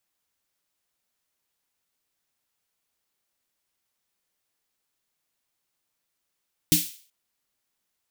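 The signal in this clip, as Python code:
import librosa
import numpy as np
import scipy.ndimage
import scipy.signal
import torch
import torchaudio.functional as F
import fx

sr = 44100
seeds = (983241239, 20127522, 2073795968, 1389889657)

y = fx.drum_snare(sr, seeds[0], length_s=0.38, hz=170.0, second_hz=300.0, noise_db=1.0, noise_from_hz=2600.0, decay_s=0.2, noise_decay_s=0.44)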